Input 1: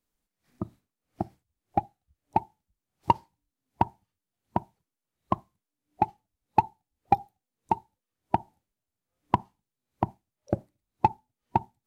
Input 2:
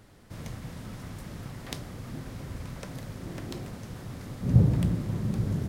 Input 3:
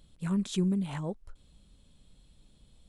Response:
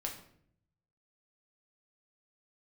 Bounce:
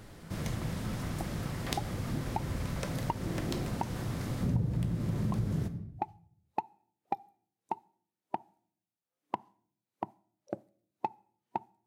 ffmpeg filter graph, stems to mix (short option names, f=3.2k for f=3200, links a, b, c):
-filter_complex "[0:a]highpass=230,volume=-8dB,asplit=2[a][b];[b]volume=-22.5dB[c];[1:a]volume=1.5dB,asplit=2[d][e];[e]volume=-5.5dB[f];[2:a]volume=-19dB[g];[3:a]atrim=start_sample=2205[h];[c][f]amix=inputs=2:normalize=0[i];[i][h]afir=irnorm=-1:irlink=0[j];[a][d][g][j]amix=inputs=4:normalize=0,acompressor=threshold=-28dB:ratio=6"